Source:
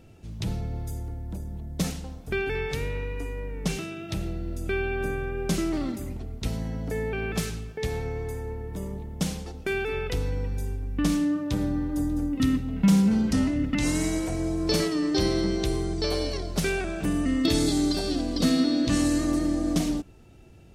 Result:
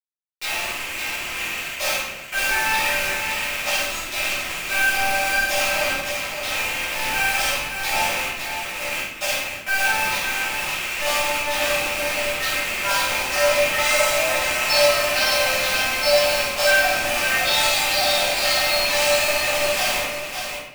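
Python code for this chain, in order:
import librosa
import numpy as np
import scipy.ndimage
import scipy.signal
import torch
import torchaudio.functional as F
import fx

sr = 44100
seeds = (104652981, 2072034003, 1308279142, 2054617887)

p1 = fx.rattle_buzz(x, sr, strikes_db=-31.0, level_db=-24.0)
p2 = scipy.signal.sosfilt(scipy.signal.cheby1(10, 1.0, 550.0, 'highpass', fs=sr, output='sos'), p1)
p3 = fx.high_shelf(p2, sr, hz=7800.0, db=-9.0)
p4 = p3 + 0.57 * np.pad(p3, (int(3.8 * sr / 1000.0), 0))[:len(p3)]
p5 = fx.chorus_voices(p4, sr, voices=4, hz=0.46, base_ms=16, depth_ms=1.3, mix_pct=45)
p6 = 10.0 ** (-35.0 / 20.0) * np.tanh(p5 / 10.0 ** (-35.0 / 20.0))
p7 = p5 + (p6 * 10.0 ** (-7.5 / 20.0))
p8 = fx.quant_dither(p7, sr, seeds[0], bits=6, dither='none')
p9 = fx.echo_multitap(p8, sr, ms=(50, 565), db=(-5.0, -5.5))
y = fx.room_shoebox(p9, sr, seeds[1], volume_m3=250.0, walls='mixed', distance_m=4.6)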